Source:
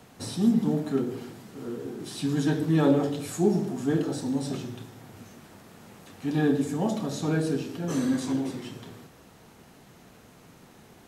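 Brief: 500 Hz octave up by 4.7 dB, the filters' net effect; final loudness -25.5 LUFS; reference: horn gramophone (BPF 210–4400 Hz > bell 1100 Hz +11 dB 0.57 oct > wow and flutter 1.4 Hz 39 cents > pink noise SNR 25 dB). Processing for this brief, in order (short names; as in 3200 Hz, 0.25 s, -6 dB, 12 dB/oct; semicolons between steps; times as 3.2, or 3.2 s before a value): BPF 210–4400 Hz; bell 500 Hz +5.5 dB; bell 1100 Hz +11 dB 0.57 oct; wow and flutter 1.4 Hz 39 cents; pink noise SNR 25 dB; gain +0.5 dB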